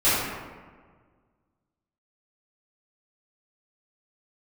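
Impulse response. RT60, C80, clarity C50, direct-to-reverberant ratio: 1.6 s, 0.5 dB, −2.5 dB, −16.5 dB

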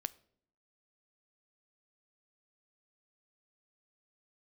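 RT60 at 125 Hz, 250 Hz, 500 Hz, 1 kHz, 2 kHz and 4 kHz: 0.80, 0.85, 0.70, 0.55, 0.45, 0.45 seconds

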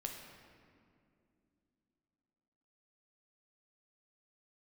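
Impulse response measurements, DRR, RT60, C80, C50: 1.5 dB, 2.5 s, 5.5 dB, 4.0 dB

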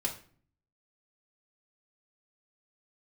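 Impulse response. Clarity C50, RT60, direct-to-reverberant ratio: 10.0 dB, 0.45 s, −3.0 dB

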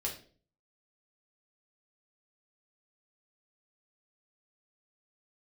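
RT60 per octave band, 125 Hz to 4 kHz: 0.65, 0.60, 0.50, 0.35, 0.35, 0.35 seconds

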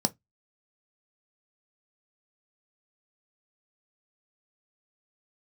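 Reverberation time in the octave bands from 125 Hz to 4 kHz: 0.25, 0.20, 0.15, 0.15, 0.15, 0.15 seconds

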